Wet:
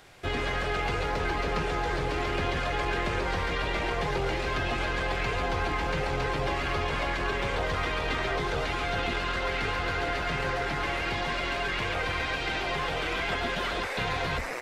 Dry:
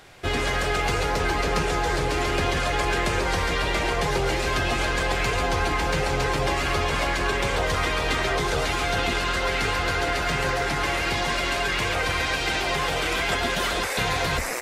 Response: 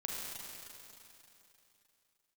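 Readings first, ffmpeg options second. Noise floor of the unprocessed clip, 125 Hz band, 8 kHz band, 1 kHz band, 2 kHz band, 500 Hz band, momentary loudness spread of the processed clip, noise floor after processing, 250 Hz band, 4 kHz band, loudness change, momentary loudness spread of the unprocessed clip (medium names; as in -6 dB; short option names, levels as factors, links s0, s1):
-26 dBFS, -5.0 dB, -13.5 dB, -5.0 dB, -5.0 dB, -5.0 dB, 1 LU, -32 dBFS, -5.0 dB, -7.0 dB, -5.5 dB, 1 LU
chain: -filter_complex "[0:a]acrossover=split=4400[s0][s1];[s1]acompressor=threshold=0.00355:ratio=4:attack=1:release=60[s2];[s0][s2]amix=inputs=2:normalize=0,aeval=exprs='0.251*(cos(1*acos(clip(val(0)/0.251,-1,1)))-cos(1*PI/2))+0.0126*(cos(4*acos(clip(val(0)/0.251,-1,1)))-cos(4*PI/2))+0.00708*(cos(5*acos(clip(val(0)/0.251,-1,1)))-cos(5*PI/2))':c=same,volume=0.531"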